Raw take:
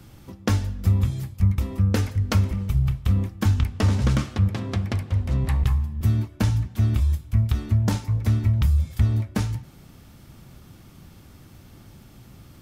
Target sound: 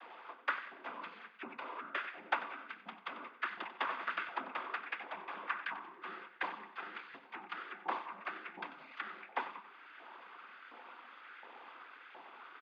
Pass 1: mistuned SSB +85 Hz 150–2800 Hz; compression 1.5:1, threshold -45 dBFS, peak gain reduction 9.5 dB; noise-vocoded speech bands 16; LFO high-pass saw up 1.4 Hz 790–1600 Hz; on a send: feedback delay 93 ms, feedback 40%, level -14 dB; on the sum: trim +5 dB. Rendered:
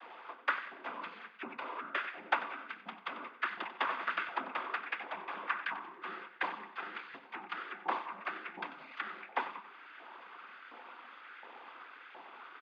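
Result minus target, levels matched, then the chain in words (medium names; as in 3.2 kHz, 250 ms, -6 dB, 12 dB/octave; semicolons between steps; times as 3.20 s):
compression: peak gain reduction -3 dB
mistuned SSB +85 Hz 150–2800 Hz; compression 1.5:1, threshold -54 dBFS, peak gain reduction 12.5 dB; noise-vocoded speech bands 16; LFO high-pass saw up 1.4 Hz 790–1600 Hz; on a send: feedback delay 93 ms, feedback 40%, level -14 dB; on the sum: trim +5 dB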